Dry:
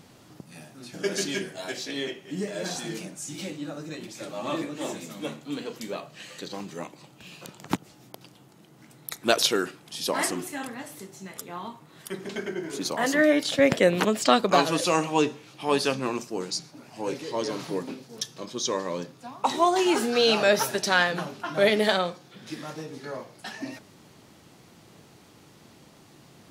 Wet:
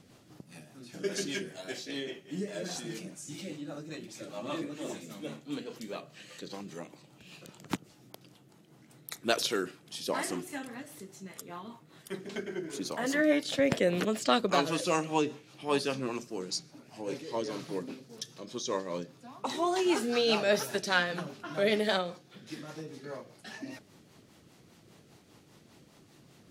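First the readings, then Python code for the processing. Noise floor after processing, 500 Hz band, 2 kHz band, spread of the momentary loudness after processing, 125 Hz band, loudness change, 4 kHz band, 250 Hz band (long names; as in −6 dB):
−60 dBFS, −6.0 dB, −6.5 dB, 19 LU, −5.0 dB, −6.5 dB, −6.5 dB, −5.0 dB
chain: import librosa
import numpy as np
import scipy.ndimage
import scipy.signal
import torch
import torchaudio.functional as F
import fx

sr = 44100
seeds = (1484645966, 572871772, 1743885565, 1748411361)

y = fx.rotary(x, sr, hz=5.0)
y = y * librosa.db_to_amplitude(-3.5)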